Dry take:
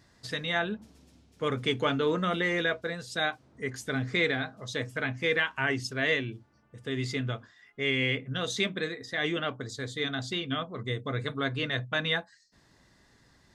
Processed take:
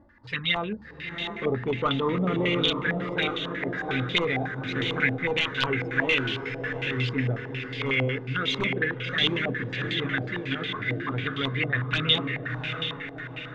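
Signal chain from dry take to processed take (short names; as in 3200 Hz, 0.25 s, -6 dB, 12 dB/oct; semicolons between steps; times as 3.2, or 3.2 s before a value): wrapped overs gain 16 dB; envelope flanger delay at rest 3.6 ms, full sweep at -25.5 dBFS; bell 670 Hz -9 dB 0.59 oct; in parallel at -5 dB: hard clip -28 dBFS, distortion -13 dB; on the sum: diffused feedback echo 0.705 s, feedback 55%, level -5 dB; phaser 0.41 Hz, delay 3.3 ms, feedback 22%; reverse; upward compressor, threshold -41 dBFS; reverse; stepped low-pass 11 Hz 720–3200 Hz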